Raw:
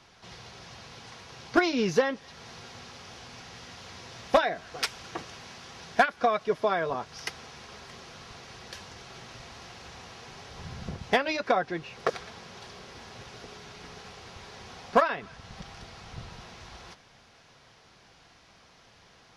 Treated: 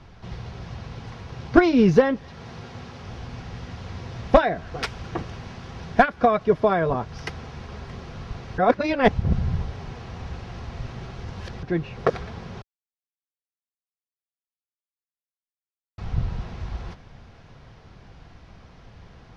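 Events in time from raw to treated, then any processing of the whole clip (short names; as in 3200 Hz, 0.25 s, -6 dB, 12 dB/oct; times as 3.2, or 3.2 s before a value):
2.29–3.04 HPF 130 Hz 6 dB/oct
8.58–11.63 reverse
12.62–15.98 mute
whole clip: RIAA curve playback; gain +4.5 dB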